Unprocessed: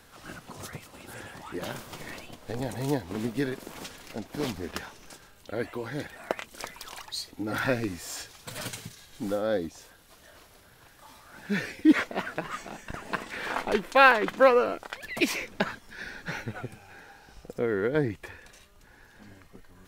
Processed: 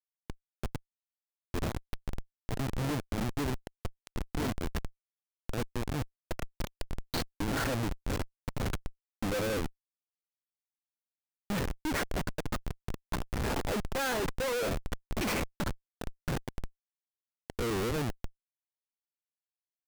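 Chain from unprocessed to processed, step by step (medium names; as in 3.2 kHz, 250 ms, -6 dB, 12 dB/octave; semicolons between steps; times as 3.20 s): Schmitt trigger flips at -30 dBFS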